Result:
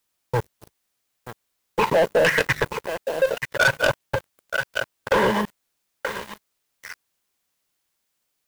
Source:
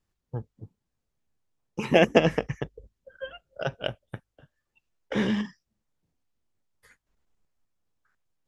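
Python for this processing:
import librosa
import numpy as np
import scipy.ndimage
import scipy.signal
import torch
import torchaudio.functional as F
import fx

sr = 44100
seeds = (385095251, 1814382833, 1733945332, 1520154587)

p1 = fx.rider(x, sr, range_db=4, speed_s=0.5)
p2 = fx.hum_notches(p1, sr, base_hz=50, count=6)
p3 = fx.level_steps(p2, sr, step_db=16)
p4 = fx.high_shelf(p3, sr, hz=2900.0, db=11.0)
p5 = p4 + fx.echo_single(p4, sr, ms=929, db=-14.5, dry=0)
p6 = fx.filter_lfo_lowpass(p5, sr, shape='saw_down', hz=0.89, low_hz=580.0, high_hz=2000.0, q=1.8)
p7 = fx.tilt_shelf(p6, sr, db=-9.0, hz=720.0)
p8 = np.where(np.abs(p7) >= 10.0 ** (-54.0 / 20.0), p7, 0.0)
p9 = scipy.signal.sosfilt(scipy.signal.butter(2, 41.0, 'highpass', fs=sr, output='sos'), p8)
p10 = p9 + 0.52 * np.pad(p9, (int(2.0 * sr / 1000.0), 0))[:len(p9)]
p11 = fx.dmg_noise_colour(p10, sr, seeds[0], colour='white', level_db=-66.0)
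y = fx.leveller(p11, sr, passes=5)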